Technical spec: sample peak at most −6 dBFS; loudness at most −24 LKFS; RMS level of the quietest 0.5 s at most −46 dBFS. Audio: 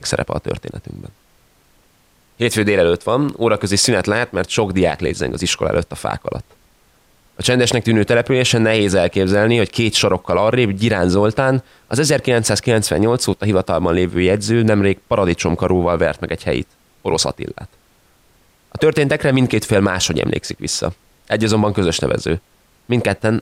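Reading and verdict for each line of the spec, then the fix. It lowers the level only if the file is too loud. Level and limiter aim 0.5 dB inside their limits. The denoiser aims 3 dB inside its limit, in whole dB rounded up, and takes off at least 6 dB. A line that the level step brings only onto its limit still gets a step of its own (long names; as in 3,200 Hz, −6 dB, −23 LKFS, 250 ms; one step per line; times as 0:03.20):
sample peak −4.5 dBFS: out of spec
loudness −17.0 LKFS: out of spec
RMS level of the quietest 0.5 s −55 dBFS: in spec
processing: level −7.5 dB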